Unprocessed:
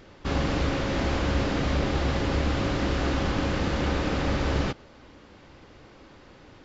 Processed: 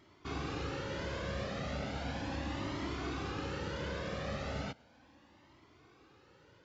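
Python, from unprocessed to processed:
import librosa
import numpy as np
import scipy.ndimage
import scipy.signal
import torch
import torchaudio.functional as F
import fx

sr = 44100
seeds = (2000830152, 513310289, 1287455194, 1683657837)

y = scipy.signal.sosfilt(scipy.signal.butter(2, 100.0, 'highpass', fs=sr, output='sos'), x)
y = fx.comb_cascade(y, sr, direction='rising', hz=0.36)
y = y * 10.0 ** (-6.5 / 20.0)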